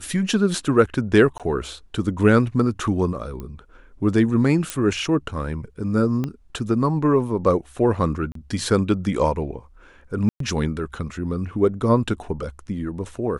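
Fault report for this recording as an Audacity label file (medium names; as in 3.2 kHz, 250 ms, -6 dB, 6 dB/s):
1.380000	1.400000	dropout 17 ms
3.400000	3.400000	pop -21 dBFS
4.700000	4.700000	pop
6.240000	6.240000	pop -14 dBFS
8.320000	8.350000	dropout 33 ms
10.290000	10.400000	dropout 113 ms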